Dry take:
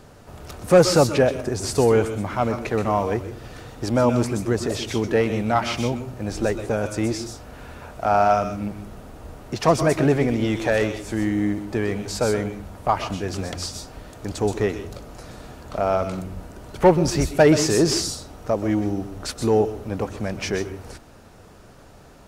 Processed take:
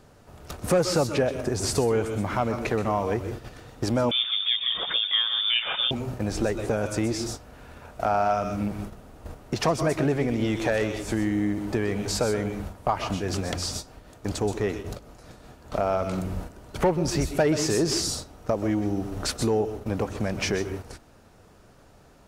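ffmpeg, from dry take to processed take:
-filter_complex "[0:a]asettb=1/sr,asplit=3[a][b][c];[a]atrim=end=4.114[d];[b]atrim=start=4.11:end=5.91,asetpts=PTS-STARTPTS,afade=t=in:d=0.004:c=qsin,afade=t=out:st=1.796:d=0.004:c=qsin,lowpass=f=3.1k:t=q:w=0.5098,lowpass=f=3.1k:t=q:w=0.6013,lowpass=f=3.1k:t=q:w=0.9,lowpass=f=3.1k:t=q:w=2.563,afreqshift=-3700[e];[c]atrim=start=5.906[f];[d][e]acrossfade=d=0.004:c1=hsin:c2=qsin[g];[g][f]acrossfade=d=0.004:c1=qsin:c2=hsin,asplit=3[h][i][j];[h]afade=t=out:st=13.18:d=0.02[k];[i]tremolo=f=5.1:d=0.37,afade=t=in:st=13.18:d=0.02,afade=t=out:st=15.71:d=0.02[l];[j]afade=t=in:st=15.71:d=0.02[m];[k][l][m]amix=inputs=3:normalize=0,acompressor=threshold=-28dB:ratio=2.5,agate=range=-10dB:threshold=-36dB:ratio=16:detection=peak,volume=3.5dB"

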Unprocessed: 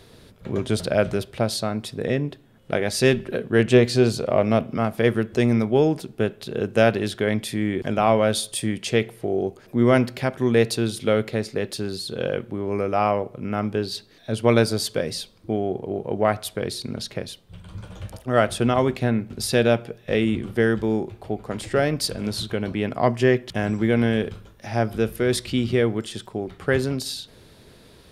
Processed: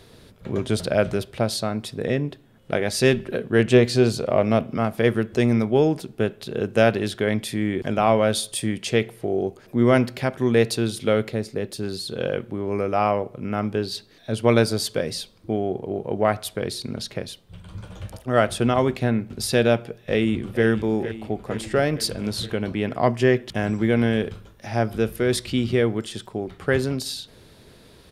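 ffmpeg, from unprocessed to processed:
-filter_complex "[0:a]asettb=1/sr,asplit=3[a][b][c];[a]atrim=end=11.324[d];[b]atrim=start=11.32:end=11.83,asetpts=PTS-STARTPTS,afade=t=in:d=0.004:c=qsin,afade=t=out:st=0.506:d=0.004:c=qsin,equalizer=f=2.3k:w=0.31:g=-5.5[e];[c]atrim=start=11.826[f];[d][e]acrossfade=d=0.004:c1=hsin:c2=qsin[g];[g][f]acrossfade=d=0.004:c1=qsin:c2=hsin,asplit=2[h][i];[i]afade=t=in:st=19.95:d=0.01,afade=t=out:st=20.65:d=0.01,aecho=0:1:460|920|1380|1840|2300|2760|3220|3680:0.266073|0.172947|0.112416|0.0730702|0.0474956|0.0308721|0.0200669|0.0130435[j];[h][j]amix=inputs=2:normalize=0"

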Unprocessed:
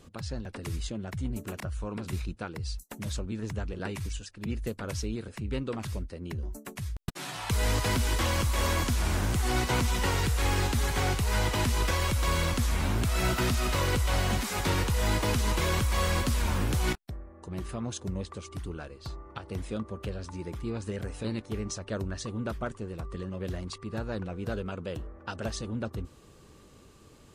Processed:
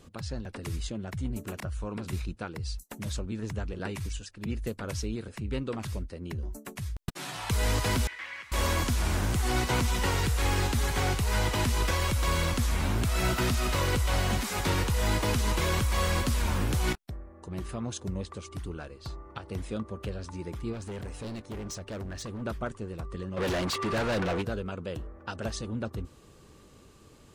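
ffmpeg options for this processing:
-filter_complex "[0:a]asettb=1/sr,asplit=3[a][b][c];[a]atrim=end=8.074[d];[b]atrim=start=8.07:end=8.52,asetpts=PTS-STARTPTS,afade=t=in:d=0.004:c=qsin,afade=t=out:st=0.446:d=0.004:c=qsin,bandpass=f=2k:t=q:w=4.1[e];[c]atrim=start=8.516[f];[d][e]acrossfade=d=0.004:c1=hsin:c2=qsin[g];[g][f]acrossfade=d=0.004:c1=qsin:c2=hsin,asplit=3[h][i][j];[h]afade=t=out:st=20.72:d=0.02[k];[i]volume=34.5dB,asoftclip=hard,volume=-34.5dB,afade=t=in:st=20.72:d=0.02,afade=t=out:st=22.41:d=0.02[l];[j]afade=t=in:st=22.41:d=0.02[m];[k][l][m]amix=inputs=3:normalize=0,asplit=3[n][o][p];[n]afade=t=out:st=23.36:d=0.02[q];[o]asplit=2[r][s];[s]highpass=f=720:p=1,volume=31dB,asoftclip=type=tanh:threshold=-21.5dB[t];[r][t]amix=inputs=2:normalize=0,lowpass=f=4.6k:p=1,volume=-6dB,afade=t=in:st=23.36:d=0.02,afade=t=out:st=24.41:d=0.02[u];[p]afade=t=in:st=24.41:d=0.02[v];[q][u][v]amix=inputs=3:normalize=0"

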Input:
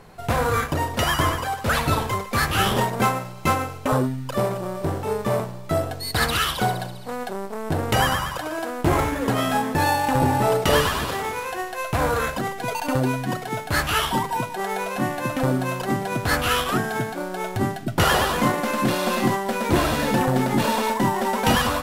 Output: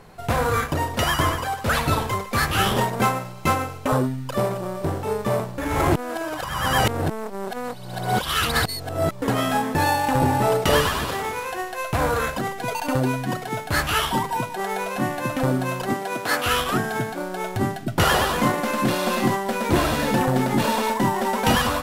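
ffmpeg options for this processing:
-filter_complex "[0:a]asettb=1/sr,asplit=3[a][b][c];[a]atrim=end=15.934[d];[b]atrim=start=15.93:end=16.46,asetpts=PTS-STARTPTS,afade=t=in:d=0.004:c=qsin,afade=t=out:st=0.526:d=0.004:c=qsin,highpass=300[e];[c]atrim=start=16.456[f];[d][e]acrossfade=d=0.004:c1=hsin:c2=qsin[g];[g][f]acrossfade=d=0.004:c1=qsin:c2=hsin,asplit=3[h][i][j];[h]atrim=end=5.582[k];[i]atrim=start=5.578:end=9.222,asetpts=PTS-STARTPTS,areverse[l];[j]atrim=start=9.218[m];[k][l]acrossfade=d=0.004:c1=hsin:c2=hsin[n];[n][m]acrossfade=d=0.004:c1=hsin:c2=hsin"

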